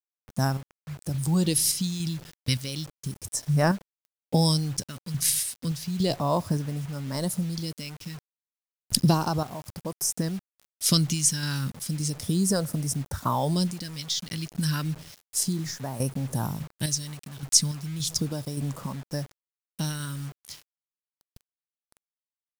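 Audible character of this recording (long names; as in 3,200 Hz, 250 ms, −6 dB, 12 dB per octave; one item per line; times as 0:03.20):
sample-and-hold tremolo, depth 75%
phaser sweep stages 2, 0.33 Hz, lowest notch 620–3,300 Hz
a quantiser's noise floor 8 bits, dither none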